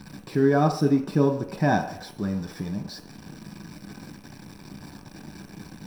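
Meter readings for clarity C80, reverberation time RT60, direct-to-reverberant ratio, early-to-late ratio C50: 11.5 dB, not exponential, 2.5 dB, 9.0 dB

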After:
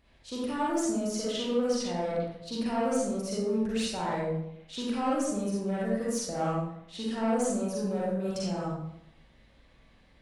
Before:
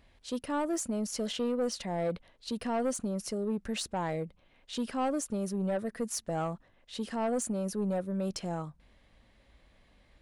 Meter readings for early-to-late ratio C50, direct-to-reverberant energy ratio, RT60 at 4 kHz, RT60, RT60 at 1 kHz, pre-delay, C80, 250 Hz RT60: -3.0 dB, -7.0 dB, 0.55 s, 0.80 s, 0.75 s, 37 ms, 2.0 dB, 0.95 s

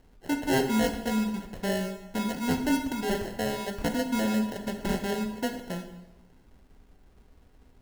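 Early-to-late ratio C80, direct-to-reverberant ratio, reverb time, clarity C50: 10.5 dB, 5.0 dB, 1.0 s, 8.0 dB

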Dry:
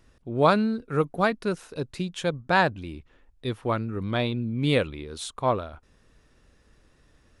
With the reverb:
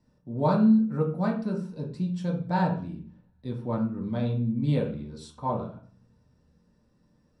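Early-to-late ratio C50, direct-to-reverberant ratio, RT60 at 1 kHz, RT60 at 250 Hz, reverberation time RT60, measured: 7.5 dB, -3.5 dB, 0.45 s, 0.70 s, 0.40 s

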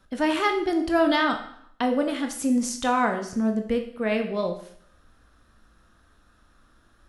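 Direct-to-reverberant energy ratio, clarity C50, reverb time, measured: 5.0 dB, 9.0 dB, 0.65 s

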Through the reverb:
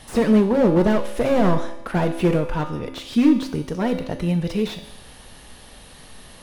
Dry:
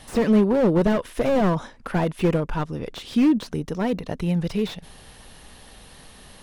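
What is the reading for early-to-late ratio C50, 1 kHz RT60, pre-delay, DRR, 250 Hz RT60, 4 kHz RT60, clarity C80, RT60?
9.5 dB, 0.90 s, 3 ms, 5.5 dB, 0.90 s, 0.90 s, 11.5 dB, 0.90 s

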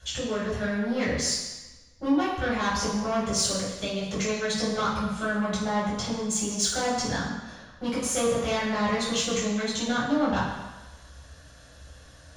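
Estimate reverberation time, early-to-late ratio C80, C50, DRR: 1.1 s, 4.0 dB, 1.5 dB, -10.0 dB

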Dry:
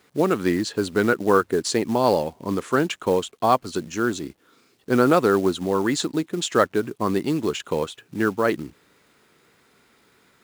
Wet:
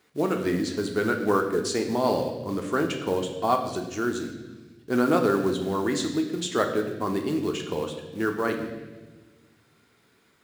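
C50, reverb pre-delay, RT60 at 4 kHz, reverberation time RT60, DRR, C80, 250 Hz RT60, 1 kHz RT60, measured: 7.0 dB, 3 ms, 1.3 s, 1.2 s, 3.0 dB, 9.0 dB, 2.0 s, 1.0 s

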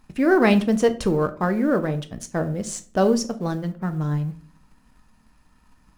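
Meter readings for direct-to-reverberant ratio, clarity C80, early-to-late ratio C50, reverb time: 8.5 dB, 20.0 dB, 15.5 dB, 0.45 s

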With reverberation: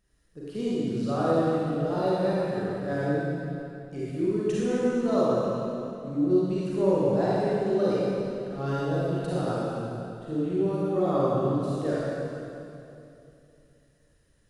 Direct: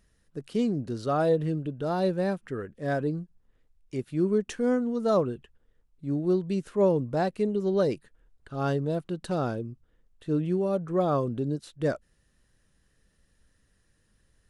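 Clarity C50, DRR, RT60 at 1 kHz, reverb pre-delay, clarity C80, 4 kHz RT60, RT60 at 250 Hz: -6.5 dB, -9.0 dB, 2.7 s, 34 ms, -3.5 dB, 2.6 s, 3.1 s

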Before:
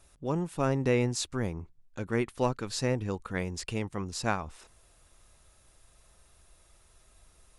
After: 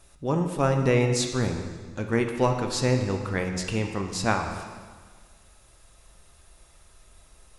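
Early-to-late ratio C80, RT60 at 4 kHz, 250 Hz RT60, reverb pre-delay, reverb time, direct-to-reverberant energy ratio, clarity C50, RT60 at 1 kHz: 7.5 dB, 1.5 s, 1.6 s, 6 ms, 1.6 s, 4.0 dB, 6.0 dB, 1.6 s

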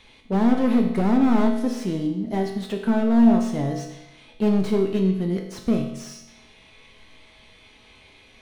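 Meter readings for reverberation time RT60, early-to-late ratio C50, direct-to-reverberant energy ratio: 0.95 s, 5.5 dB, 1.0 dB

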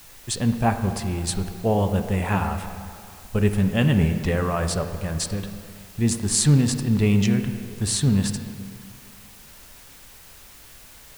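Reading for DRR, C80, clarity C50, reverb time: 6.5 dB, 9.0 dB, 8.0 dB, 2.4 s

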